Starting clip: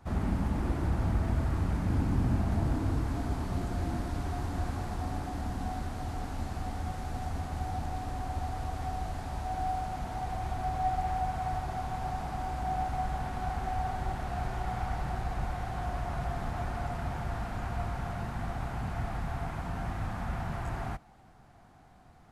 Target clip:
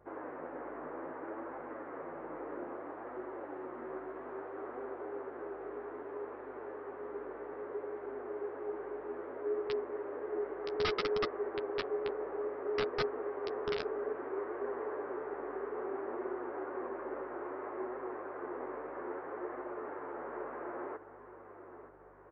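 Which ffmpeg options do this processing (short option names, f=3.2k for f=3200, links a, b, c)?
-filter_complex "[0:a]asplit=2[a][b];[b]aecho=0:1:924|1848|2772|3696|4620:0.237|0.126|0.0666|0.0353|0.0187[c];[a][c]amix=inputs=2:normalize=0,afftfilt=real='re*(1-between(b*sr/4096,180,560))':imag='im*(1-between(b*sr/4096,180,560))':win_size=4096:overlap=0.75,highpass=f=350:t=q:w=0.5412,highpass=f=350:t=q:w=1.307,lowpass=f=2.2k:t=q:w=0.5176,lowpass=f=2.2k:t=q:w=0.7071,lowpass=f=2.2k:t=q:w=1.932,afreqshift=-330,aresample=11025,aeval=exprs='(mod(21.1*val(0)+1,2)-1)/21.1':c=same,aresample=44100,aeval=exprs='val(0)+0.000562*(sin(2*PI*50*n/s)+sin(2*PI*2*50*n/s)/2+sin(2*PI*3*50*n/s)/3+sin(2*PI*4*50*n/s)/4+sin(2*PI*5*50*n/s)/5)':c=same,flanger=delay=7.6:depth=6.1:regen=-16:speed=0.61:shape=triangular,volume=3dB"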